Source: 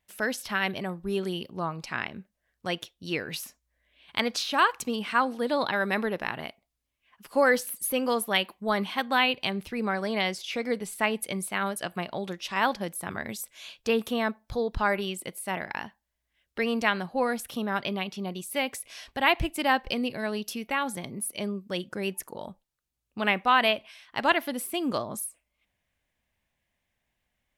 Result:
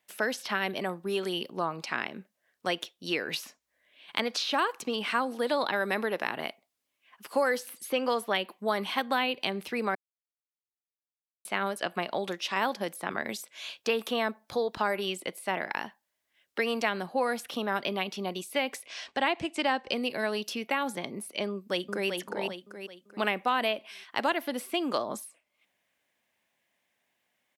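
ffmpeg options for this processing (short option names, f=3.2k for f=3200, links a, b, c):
-filter_complex "[0:a]asettb=1/sr,asplit=3[a][b][c];[a]atrim=end=18.864[d];[b]atrim=start=18.86:end=19.93,asetpts=PTS-STARTPTS,afade=t=in:d=0.004:c=qsin,afade=t=out:st=1.066:d=0.004:c=qsin,lowpass=f=8.4k:w=0.5412,lowpass=f=8.4k:w=1.3066[e];[c]atrim=start=19.926[f];[d][e]acrossfade=d=0.004:c1=hsin:c2=qsin[g];[g][f]acrossfade=d=0.004:c1=qsin:c2=hsin,asplit=2[h][i];[i]afade=t=in:st=21.49:d=0.01,afade=t=out:st=22.08:d=0.01,aecho=0:1:390|780|1170|1560|1950:0.562341|0.224937|0.0899746|0.0359898|0.0143959[j];[h][j]amix=inputs=2:normalize=0,asplit=3[k][l][m];[k]atrim=end=9.95,asetpts=PTS-STARTPTS,afade=t=out:st=9.946:d=0.004:c=hsin[n];[l]atrim=start=9.95:end=11.45,asetpts=PTS-STARTPTS,volume=0[o];[m]atrim=start=11.45,asetpts=PTS-STARTPTS,afade=t=in:d=0.004:c=hsin[p];[n][o][p]concat=n=3:v=0:a=1,highpass=270,acrossover=split=570|5700[q][r][s];[q]acompressor=threshold=-35dB:ratio=4[t];[r]acompressor=threshold=-32dB:ratio=4[u];[s]acompressor=threshold=-52dB:ratio=4[v];[t][u][v]amix=inputs=3:normalize=0,volume=4dB"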